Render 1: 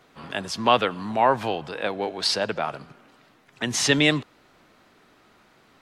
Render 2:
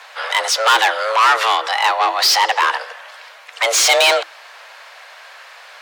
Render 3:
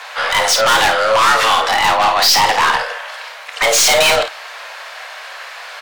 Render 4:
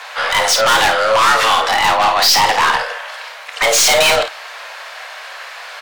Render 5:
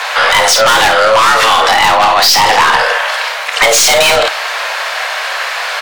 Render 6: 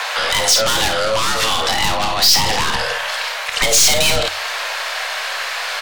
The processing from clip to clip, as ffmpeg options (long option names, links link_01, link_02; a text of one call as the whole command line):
ffmpeg -i in.wav -filter_complex "[0:a]asplit=2[link_01][link_02];[link_02]highpass=frequency=720:poles=1,volume=27dB,asoftclip=type=tanh:threshold=-4dB[link_03];[link_01][link_03]amix=inputs=2:normalize=0,lowpass=frequency=7300:poles=1,volume=-6dB,afreqshift=330,volume=-1dB" out.wav
ffmpeg -i in.wav -filter_complex "[0:a]aeval=exprs='(tanh(7.94*val(0)+0.1)-tanh(0.1))/7.94':channel_layout=same,asplit=2[link_01][link_02];[link_02]aecho=0:1:29|53:0.355|0.398[link_03];[link_01][link_03]amix=inputs=2:normalize=0,volume=7.5dB" out.wav
ffmpeg -i in.wav -af anull out.wav
ffmpeg -i in.wav -af "alimiter=level_in=15dB:limit=-1dB:release=50:level=0:latency=1,volume=-1dB" out.wav
ffmpeg -i in.wav -filter_complex "[0:a]asubboost=boost=2.5:cutoff=240,acrossover=split=440|3000[link_01][link_02][link_03];[link_02]acompressor=threshold=-22dB:ratio=3[link_04];[link_01][link_04][link_03]amix=inputs=3:normalize=0,bandreject=frequency=45.05:width_type=h:width=4,bandreject=frequency=90.1:width_type=h:width=4,bandreject=frequency=135.15:width_type=h:width=4,volume=-2.5dB" out.wav